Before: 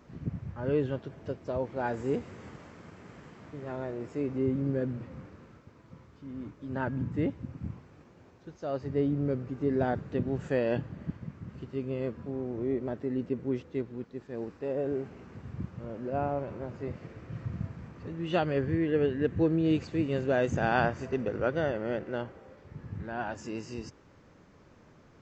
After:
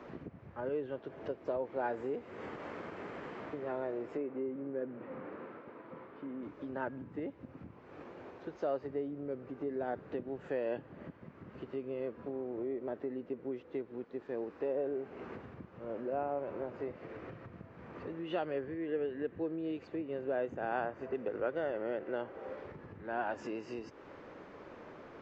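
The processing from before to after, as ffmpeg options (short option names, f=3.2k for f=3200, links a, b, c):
-filter_complex "[0:a]asettb=1/sr,asplit=3[a][b][c];[a]atrim=end=4.174[d];[b]atrim=start=4.17:end=6.43,asetpts=PTS-STARTPTS,afade=t=in:d=0.004:c=qsin,afade=t=out:st=2.256:d=0.004:c=qsin,highpass=170,lowpass=2.5k[e];[c]atrim=start=6.426[f];[d][e]acrossfade=d=0.004:c1=hsin:c2=qsin[g];[g][f]acrossfade=d=0.004:c1=qsin:c2=hsin,asettb=1/sr,asplit=3[h][i][j];[h]atrim=end=19.884[k];[i]atrim=start=19.88:end=21.15,asetpts=PTS-STARTPTS,afade=t=in:d=0.004:c=qsin,afade=t=out:st=1.266:d=0.004:c=qsin,highshelf=f=2.7k:g=-8.5[l];[j]atrim=start=21.146[m];[k][l]acrossfade=d=0.004:c1=hsin:c2=qsin[n];[n][m]acrossfade=d=0.004:c1=qsin:c2=hsin,lowshelf=f=410:g=11,acompressor=threshold=-38dB:ratio=5,acrossover=split=350 3700:gain=0.0708 1 0.141[o][p][q];[o][p][q]amix=inputs=3:normalize=0,volume=8dB"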